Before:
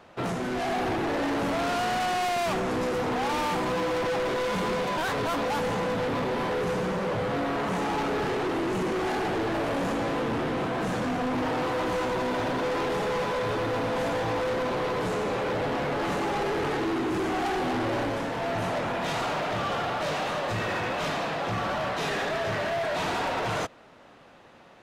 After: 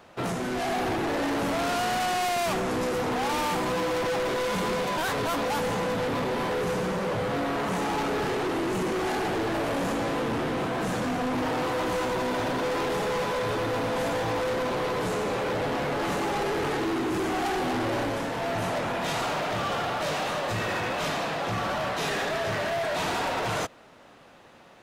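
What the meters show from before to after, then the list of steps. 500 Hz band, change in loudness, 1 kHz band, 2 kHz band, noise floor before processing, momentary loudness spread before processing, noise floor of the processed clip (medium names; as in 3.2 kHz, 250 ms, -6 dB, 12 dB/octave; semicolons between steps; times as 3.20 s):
0.0 dB, +0.5 dB, 0.0 dB, +0.5 dB, -52 dBFS, 2 LU, -52 dBFS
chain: treble shelf 6.8 kHz +8 dB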